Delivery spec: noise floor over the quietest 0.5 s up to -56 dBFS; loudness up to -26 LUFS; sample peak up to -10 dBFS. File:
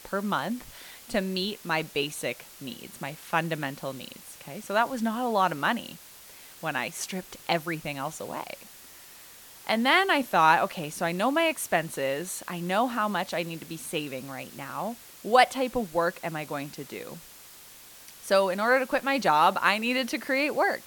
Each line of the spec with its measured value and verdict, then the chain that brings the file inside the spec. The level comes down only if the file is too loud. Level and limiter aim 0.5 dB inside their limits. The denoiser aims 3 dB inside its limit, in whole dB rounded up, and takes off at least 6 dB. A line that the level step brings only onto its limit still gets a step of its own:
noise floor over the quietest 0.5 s -49 dBFS: fail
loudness -27.0 LUFS: pass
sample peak -5.5 dBFS: fail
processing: noise reduction 10 dB, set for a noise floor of -49 dBFS; peak limiter -10.5 dBFS

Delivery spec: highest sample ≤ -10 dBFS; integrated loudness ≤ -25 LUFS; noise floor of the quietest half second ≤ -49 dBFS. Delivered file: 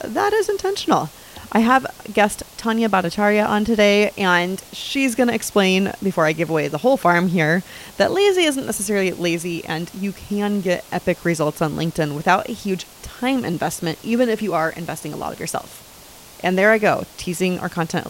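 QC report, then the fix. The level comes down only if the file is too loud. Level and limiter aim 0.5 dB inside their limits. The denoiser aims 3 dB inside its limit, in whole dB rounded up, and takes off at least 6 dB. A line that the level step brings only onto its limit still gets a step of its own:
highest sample -2.5 dBFS: fail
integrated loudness -19.5 LUFS: fail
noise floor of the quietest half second -43 dBFS: fail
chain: noise reduction 6 dB, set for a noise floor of -43 dBFS; trim -6 dB; peak limiter -10.5 dBFS

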